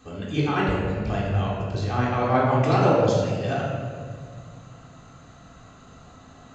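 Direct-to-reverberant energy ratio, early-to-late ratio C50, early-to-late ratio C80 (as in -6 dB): -6.5 dB, 0.0 dB, 2.0 dB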